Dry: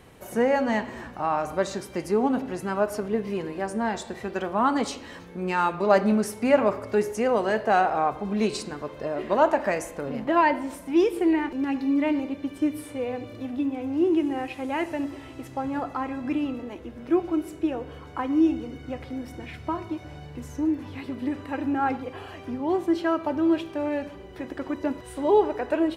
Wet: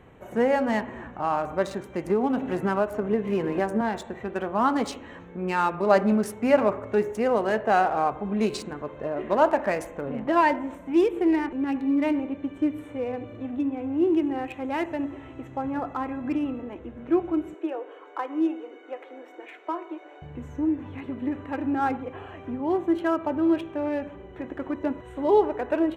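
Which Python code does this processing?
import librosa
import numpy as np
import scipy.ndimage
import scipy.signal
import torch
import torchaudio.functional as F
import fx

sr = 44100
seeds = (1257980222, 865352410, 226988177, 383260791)

y = fx.band_squash(x, sr, depth_pct=100, at=(2.06, 3.81))
y = fx.steep_highpass(y, sr, hz=330.0, slope=48, at=(17.54, 20.22))
y = fx.wiener(y, sr, points=9)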